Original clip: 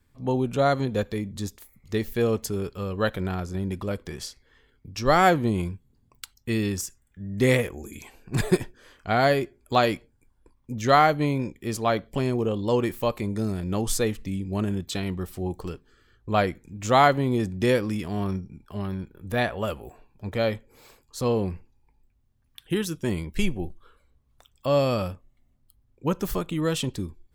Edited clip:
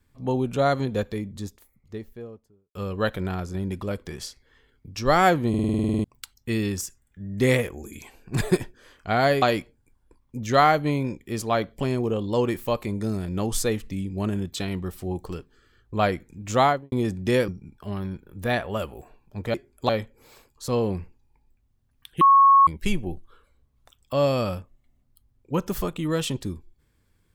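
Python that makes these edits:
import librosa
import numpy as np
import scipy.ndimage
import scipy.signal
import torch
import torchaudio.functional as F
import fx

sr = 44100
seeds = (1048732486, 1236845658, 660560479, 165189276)

y = fx.studio_fade_out(x, sr, start_s=0.83, length_s=1.92)
y = fx.studio_fade_out(y, sr, start_s=16.92, length_s=0.35)
y = fx.edit(y, sr, fx.stutter_over(start_s=5.49, slice_s=0.05, count=11),
    fx.move(start_s=9.42, length_s=0.35, to_s=20.42),
    fx.cut(start_s=17.83, length_s=0.53),
    fx.bleep(start_s=22.74, length_s=0.46, hz=1100.0, db=-11.0), tone=tone)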